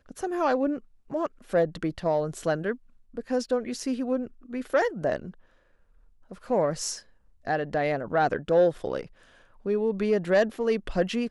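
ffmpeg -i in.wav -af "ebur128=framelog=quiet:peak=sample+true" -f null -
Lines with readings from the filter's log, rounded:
Integrated loudness:
  I:         -27.5 LUFS
  Threshold: -38.3 LUFS
Loudness range:
  LRA:         4.5 LU
  Threshold: -48.7 LUFS
  LRA low:   -30.8 LUFS
  LRA high:  -26.2 LUFS
Sample peak:
  Peak:      -12.4 dBFS
True peak:
  Peak:      -12.4 dBFS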